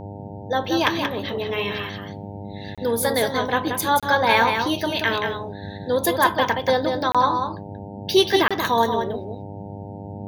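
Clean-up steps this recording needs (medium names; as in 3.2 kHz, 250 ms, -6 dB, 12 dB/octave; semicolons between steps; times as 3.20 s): de-hum 100.5 Hz, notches 9; interpolate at 2.75/4.00/7.12/8.48 s, 26 ms; noise print and reduce 30 dB; inverse comb 181 ms -6 dB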